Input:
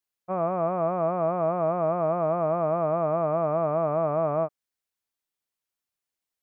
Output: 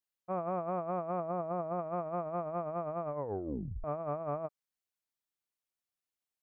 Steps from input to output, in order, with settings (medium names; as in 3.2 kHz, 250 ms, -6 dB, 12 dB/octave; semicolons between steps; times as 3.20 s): 1.20–1.79 s: treble shelf 2.1 kHz -8.5 dB; compressor with a negative ratio -27 dBFS, ratio -0.5; 3.08 s: tape stop 0.76 s; trim -8.5 dB